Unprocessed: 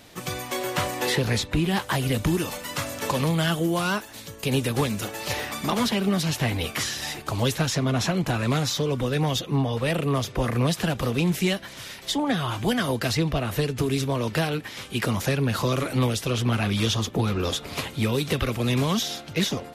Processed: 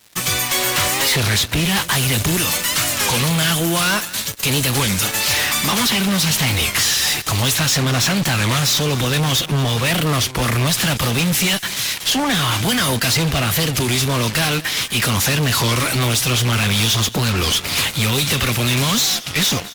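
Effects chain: HPF 57 Hz 12 dB/oct; passive tone stack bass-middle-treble 5-5-5; in parallel at -3 dB: fuzz box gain 47 dB, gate -53 dBFS; on the sum: echo 0.233 s -18.5 dB; record warp 33 1/3 rpm, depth 160 cents

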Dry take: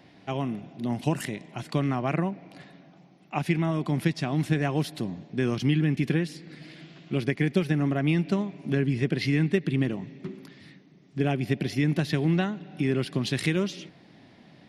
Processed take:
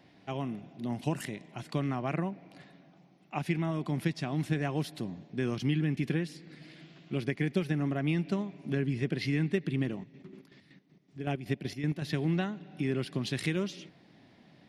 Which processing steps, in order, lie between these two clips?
9.95–12.02 chopper 5.3 Hz, depth 60%, duty 45%; gain -5.5 dB

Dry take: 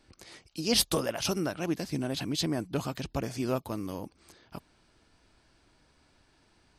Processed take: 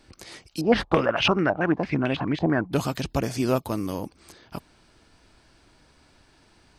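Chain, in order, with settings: 0.61–2.73 stepped low-pass 9 Hz 770–2700 Hz; gain +7 dB

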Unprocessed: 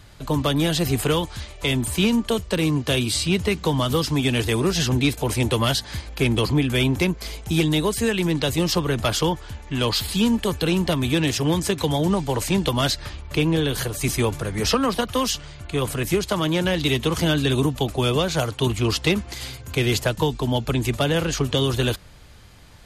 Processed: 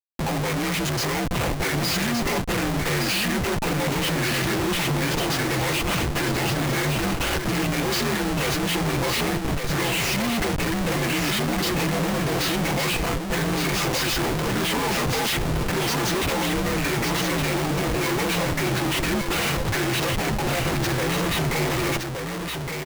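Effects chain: inharmonic rescaling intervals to 83%; low shelf 160 Hz -11.5 dB; comb 5.9 ms, depth 61%; in parallel at -1.5 dB: compressor, threshold -32 dBFS, peak gain reduction 15 dB; on the sum: Schmitt trigger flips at -33.5 dBFS; on a send: echo 1.166 s -5 dB; on the sum: gain -1.5 dB

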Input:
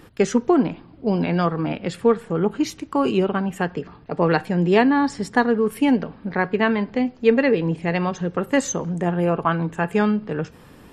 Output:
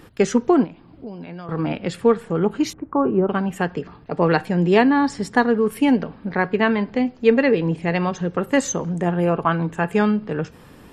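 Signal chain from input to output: 0.64–1.49 compressor 5:1, threshold -35 dBFS, peak gain reduction 18 dB; 2.73–3.29 LPF 1400 Hz 24 dB/oct; gain +1 dB

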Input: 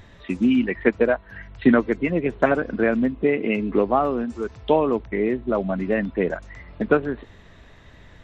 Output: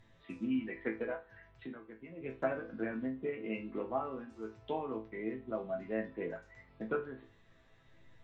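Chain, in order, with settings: treble ducked by the level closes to 2800 Hz, closed at -14.5 dBFS; 1.3–2.21 compressor 2:1, threshold -36 dBFS, peak gain reduction 14 dB; resonator bank A2 minor, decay 0.3 s; gain -3 dB

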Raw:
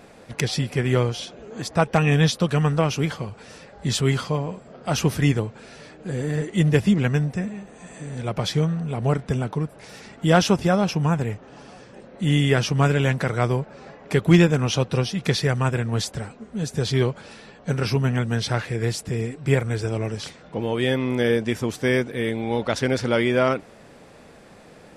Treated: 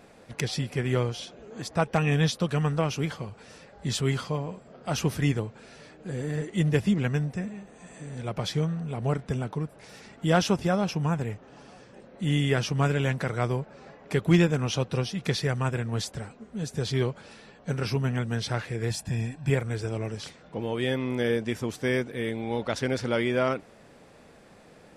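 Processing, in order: 18.9–19.5 comb 1.2 ms, depth 75%; gain -5.5 dB

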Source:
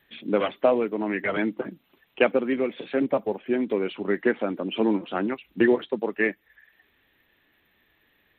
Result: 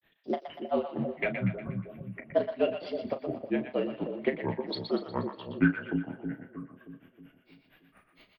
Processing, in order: recorder AGC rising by 6.1 dB/s; frequency shift -43 Hz; flange 0.77 Hz, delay 5.8 ms, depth 5.4 ms, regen -53%; grains 0.144 s, grains 4.3/s, spray 24 ms, pitch spread up and down by 7 st; doubler 36 ms -11 dB; small resonant body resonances 640/2800 Hz, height 7 dB; on a send: split-band echo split 630 Hz, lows 0.315 s, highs 0.12 s, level -7 dB; on the sum: gain +1.5 dB

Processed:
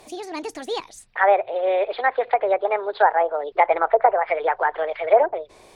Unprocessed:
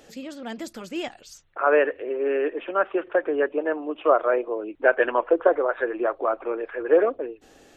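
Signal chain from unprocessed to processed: speed mistake 33 rpm record played at 45 rpm; treble ducked by the level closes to 1300 Hz, closed at -17.5 dBFS; gain +3.5 dB

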